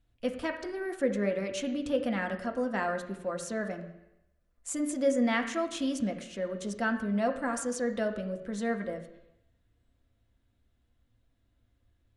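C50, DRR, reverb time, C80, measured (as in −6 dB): 9.5 dB, 4.0 dB, 0.85 s, 11.5 dB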